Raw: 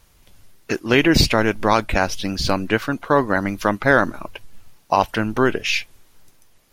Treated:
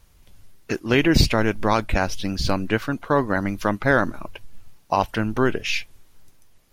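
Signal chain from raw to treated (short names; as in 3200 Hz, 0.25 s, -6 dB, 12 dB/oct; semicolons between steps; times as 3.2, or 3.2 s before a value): low shelf 190 Hz +6 dB; gain -4 dB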